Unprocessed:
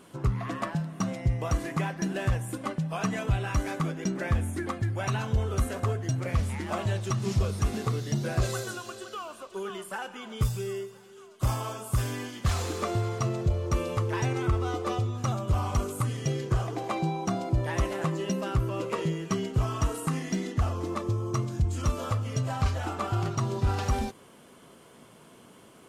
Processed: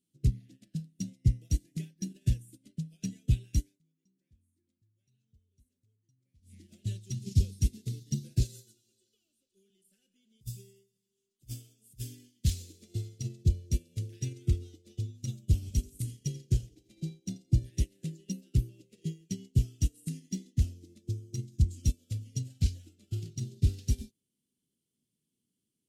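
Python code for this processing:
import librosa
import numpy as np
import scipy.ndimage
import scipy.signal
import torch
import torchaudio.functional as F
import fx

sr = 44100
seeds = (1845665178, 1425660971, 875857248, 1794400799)

y = fx.over_compress(x, sr, threshold_db=-28.0, ratio=-0.5, at=(9.86, 12.32), fade=0.02)
y = fx.echo_feedback(y, sr, ms=86, feedback_pct=60, wet_db=-11.5, at=(15.62, 17.7), fade=0.02)
y = fx.edit(y, sr, fx.fade_down_up(start_s=3.63, length_s=2.94, db=-16.0, fade_s=0.16), tone=tone)
y = scipy.signal.sosfilt(scipy.signal.cheby1(2, 1.0, [250.0, 3900.0], 'bandstop', fs=sr, output='sos'), y)
y = fx.high_shelf(y, sr, hz=8600.0, db=7.5)
y = fx.upward_expand(y, sr, threshold_db=-42.0, expansion=2.5)
y = y * librosa.db_to_amplitude(4.0)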